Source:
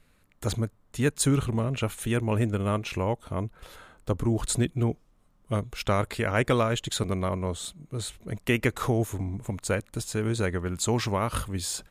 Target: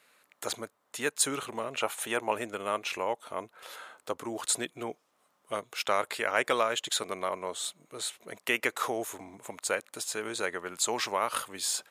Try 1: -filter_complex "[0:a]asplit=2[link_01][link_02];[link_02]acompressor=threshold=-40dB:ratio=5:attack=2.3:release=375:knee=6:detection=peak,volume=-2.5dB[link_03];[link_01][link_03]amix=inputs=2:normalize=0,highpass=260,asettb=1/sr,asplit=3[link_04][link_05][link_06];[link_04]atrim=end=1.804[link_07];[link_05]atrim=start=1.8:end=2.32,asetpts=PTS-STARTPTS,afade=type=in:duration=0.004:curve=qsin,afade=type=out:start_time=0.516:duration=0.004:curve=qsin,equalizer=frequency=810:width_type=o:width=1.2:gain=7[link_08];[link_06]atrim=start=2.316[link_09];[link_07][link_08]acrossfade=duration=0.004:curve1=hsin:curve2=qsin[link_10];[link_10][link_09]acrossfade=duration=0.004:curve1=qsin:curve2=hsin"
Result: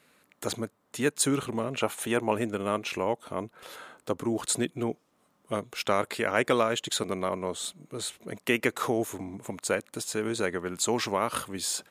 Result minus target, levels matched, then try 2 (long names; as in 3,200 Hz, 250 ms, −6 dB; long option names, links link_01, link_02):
250 Hz band +7.5 dB
-filter_complex "[0:a]asplit=2[link_01][link_02];[link_02]acompressor=threshold=-40dB:ratio=5:attack=2.3:release=375:knee=6:detection=peak,volume=-2.5dB[link_03];[link_01][link_03]amix=inputs=2:normalize=0,highpass=570,asettb=1/sr,asplit=3[link_04][link_05][link_06];[link_04]atrim=end=1.804[link_07];[link_05]atrim=start=1.8:end=2.32,asetpts=PTS-STARTPTS,afade=type=in:duration=0.004:curve=qsin,afade=type=out:start_time=0.516:duration=0.004:curve=qsin,equalizer=frequency=810:width_type=o:width=1.2:gain=7[link_08];[link_06]atrim=start=2.316[link_09];[link_07][link_08]acrossfade=duration=0.004:curve1=hsin:curve2=qsin[link_10];[link_10][link_09]acrossfade=duration=0.004:curve1=qsin:curve2=hsin"